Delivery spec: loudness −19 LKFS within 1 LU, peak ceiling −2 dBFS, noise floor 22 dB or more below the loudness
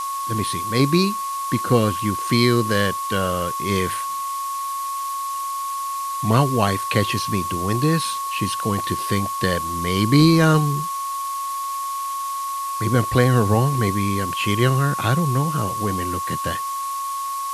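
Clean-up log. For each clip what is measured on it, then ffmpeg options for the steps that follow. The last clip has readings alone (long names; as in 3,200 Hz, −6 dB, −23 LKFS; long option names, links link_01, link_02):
interfering tone 1,100 Hz; level of the tone −24 dBFS; background noise floor −27 dBFS; target noise floor −43 dBFS; integrated loudness −21.0 LKFS; sample peak −2.0 dBFS; target loudness −19.0 LKFS
→ -af "bandreject=frequency=1100:width=30"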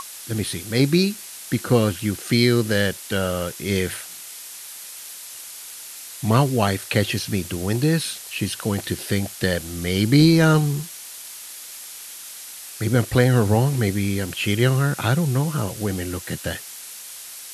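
interfering tone none found; background noise floor −38 dBFS; target noise floor −44 dBFS
→ -af "afftdn=noise_reduction=6:noise_floor=-38"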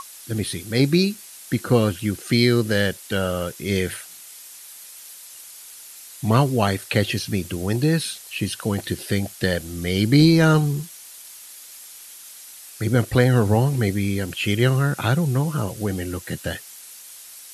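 background noise floor −42 dBFS; target noise floor −44 dBFS
→ -af "afftdn=noise_reduction=6:noise_floor=-42"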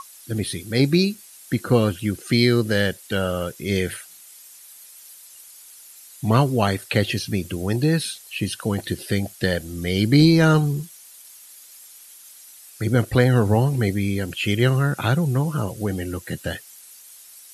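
background noise floor −46 dBFS; integrated loudness −21.5 LKFS; sample peak −3.0 dBFS; target loudness −19.0 LKFS
→ -af "volume=2.5dB,alimiter=limit=-2dB:level=0:latency=1"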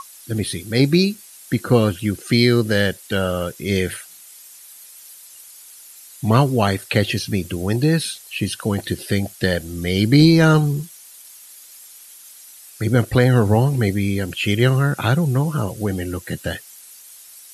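integrated loudness −19.0 LKFS; sample peak −2.0 dBFS; background noise floor −43 dBFS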